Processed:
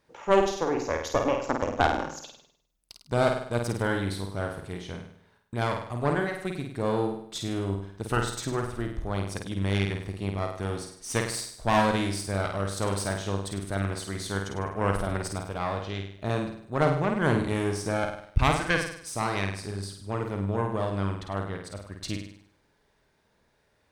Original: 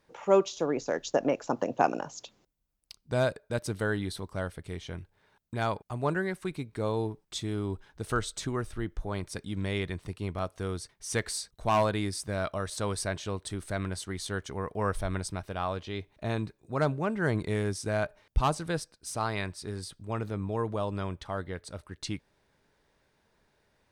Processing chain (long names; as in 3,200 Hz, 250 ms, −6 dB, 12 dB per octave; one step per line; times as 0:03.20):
0:18.37–0:18.92: flat-topped bell 2,000 Hz +12.5 dB 1 octave
harmonic generator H 4 −11 dB, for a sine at −10 dBFS
flutter between parallel walls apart 8.7 metres, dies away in 0.62 s